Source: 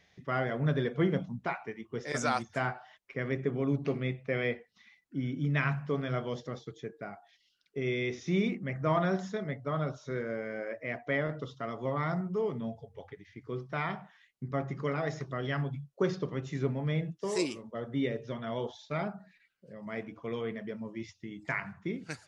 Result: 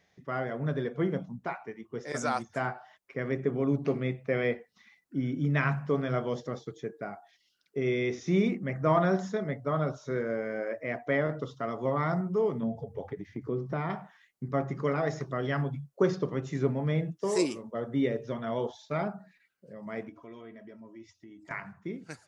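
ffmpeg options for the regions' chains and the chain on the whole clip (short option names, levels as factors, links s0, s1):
-filter_complex "[0:a]asettb=1/sr,asplit=3[s0][s1][s2];[s0]atrim=end=12.634[s3];[s1]atrim=start=12.63:end=13.9,asetpts=PTS-STARTPTS,afade=t=in:d=0.004:c=qsin,afade=t=out:st=1.266:d=0.004:c=qsin,equalizer=f=210:w=0.31:g=11.5,acompressor=threshold=0.0141:ratio=2:attack=3.2:release=140:knee=1:detection=peak[s4];[s2]atrim=start=13.896[s5];[s3][s4]acrossfade=d=0.004:c1=hsin:c2=qsin[s6];[s6][s5]acrossfade=d=0.004:c1=qsin:c2=hsin,asettb=1/sr,asplit=3[s7][s8][s9];[s7]atrim=end=20.094[s10];[s8]atrim=start=20.09:end=21.51,asetpts=PTS-STARTPTS,afade=t=in:d=0.004:c=qsin,afade=t=out:st=1.416:d=0.004:c=qsin,aecho=1:1:3.1:0.63,atrim=end_sample=62622,acompressor=threshold=0.00282:ratio=2:attack=3.2:release=140:knee=1:detection=peak[s11];[s9]atrim=start=21.506[s12];[s10][s11]acrossfade=d=0.004:c1=hsin:c2=qsin[s13];[s13][s12]acrossfade=d=0.004:c1=qsin:c2=hsin,lowshelf=f=100:g=-9,dynaudnorm=f=560:g=11:m=1.78,equalizer=f=3100:t=o:w=1.7:g=-6.5"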